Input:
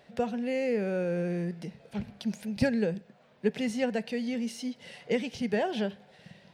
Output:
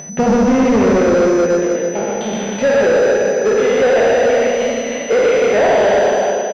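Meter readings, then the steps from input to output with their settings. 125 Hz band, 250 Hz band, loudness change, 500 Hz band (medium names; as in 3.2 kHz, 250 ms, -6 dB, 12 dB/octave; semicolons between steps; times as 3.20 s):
+9.5 dB, +13.5 dB, +17.5 dB, +20.5 dB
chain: spectral sustain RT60 1.73 s; in parallel at +1 dB: peak limiter -19 dBFS, peak gain reduction 8.5 dB; on the sum: gate with hold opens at -23 dBFS; high-pass sweep 150 Hz -> 540 Hz, 0.03–1.69 s; peaking EQ 190 Hz +7 dB 1.1 oct; hum notches 60/120/180/240/300/360/420/480 Hz; loudspeakers at several distances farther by 42 m -3 dB, 54 m -12 dB; upward compressor, threshold -28 dBFS; feedback delay 317 ms, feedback 33%, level -7 dB; saturation -16.5 dBFS, distortion -9 dB; class-D stage that switches slowly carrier 6 kHz; trim +7.5 dB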